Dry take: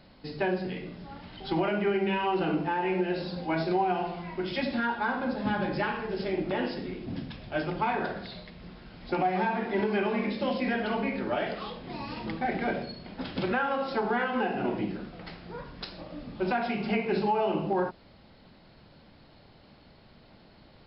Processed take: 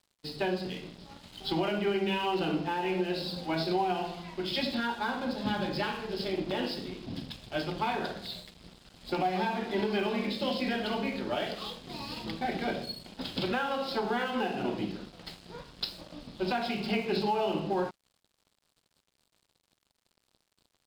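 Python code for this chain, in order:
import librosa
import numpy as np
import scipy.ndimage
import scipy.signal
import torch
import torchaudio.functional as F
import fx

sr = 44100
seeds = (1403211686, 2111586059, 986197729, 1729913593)

y = fx.high_shelf_res(x, sr, hz=2700.0, db=7.5, q=1.5)
y = np.sign(y) * np.maximum(np.abs(y) - 10.0 ** (-47.5 / 20.0), 0.0)
y = F.gain(torch.from_numpy(y), -1.5).numpy()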